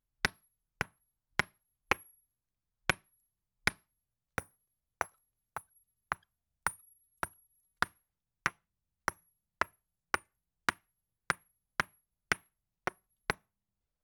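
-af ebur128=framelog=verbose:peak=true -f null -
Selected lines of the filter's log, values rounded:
Integrated loudness:
  I:         -37.9 LUFS
  Threshold: -48.4 LUFS
Loudness range:
  LRA:         5.3 LU
  Threshold: -59.6 LUFS
  LRA low:   -43.1 LUFS
  LRA high:  -37.8 LUFS
True peak:
  Peak:      -10.1 dBFS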